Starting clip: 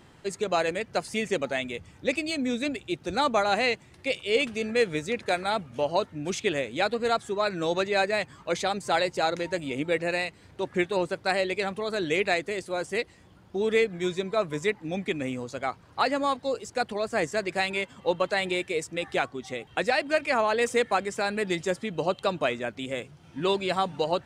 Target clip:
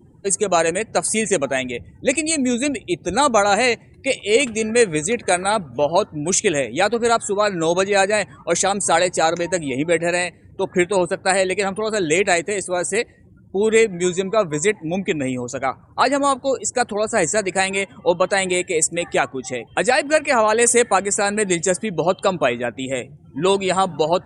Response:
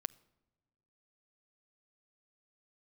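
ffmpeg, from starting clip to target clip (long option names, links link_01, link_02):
-af "afftdn=noise_reduction=31:noise_floor=-49,highshelf=frequency=5900:width_type=q:width=1.5:gain=13.5,volume=8.5dB"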